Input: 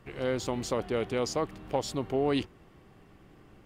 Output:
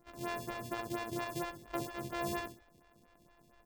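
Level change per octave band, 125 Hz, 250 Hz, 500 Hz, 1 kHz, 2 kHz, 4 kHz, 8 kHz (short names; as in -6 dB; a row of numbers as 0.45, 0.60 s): -9.5, -8.5, -12.0, -4.0, -2.0, -9.0, -8.0 dB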